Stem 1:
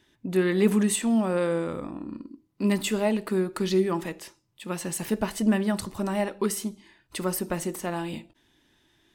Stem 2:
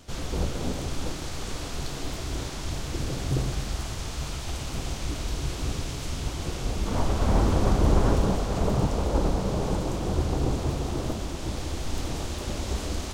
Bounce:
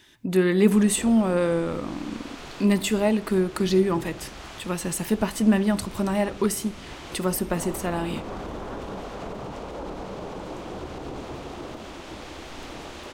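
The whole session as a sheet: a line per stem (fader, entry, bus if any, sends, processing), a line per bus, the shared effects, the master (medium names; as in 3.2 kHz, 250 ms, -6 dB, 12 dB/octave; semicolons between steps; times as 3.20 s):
+2.0 dB, 0.00 s, no send, none
-5.0 dB, 0.65 s, no send, three-band isolator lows -14 dB, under 210 Hz, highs -13 dB, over 3.2 kHz; peak limiter -23 dBFS, peak gain reduction 7.5 dB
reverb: none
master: bass shelf 170 Hz +4 dB; tape noise reduction on one side only encoder only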